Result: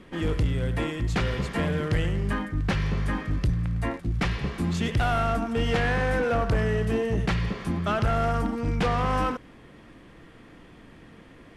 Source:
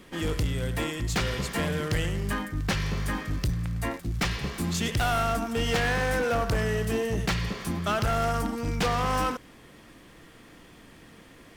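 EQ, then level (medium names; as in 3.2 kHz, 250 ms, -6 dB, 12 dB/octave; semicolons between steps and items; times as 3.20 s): brick-wall FIR low-pass 12 kHz; tone controls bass -1 dB, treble -10 dB; bass shelf 370 Hz +4.5 dB; 0.0 dB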